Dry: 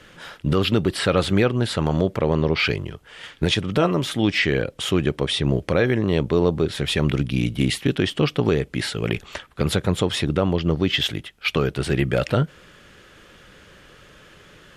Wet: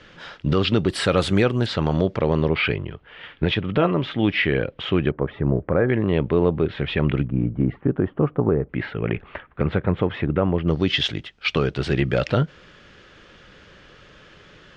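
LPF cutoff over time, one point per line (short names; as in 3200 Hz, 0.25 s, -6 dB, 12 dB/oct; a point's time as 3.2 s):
LPF 24 dB/oct
5700 Hz
from 0.89 s 10000 Hz
from 1.66 s 5500 Hz
from 2.48 s 3200 Hz
from 5.11 s 1600 Hz
from 5.89 s 2900 Hz
from 7.25 s 1300 Hz
from 8.69 s 2300 Hz
from 10.68 s 5900 Hz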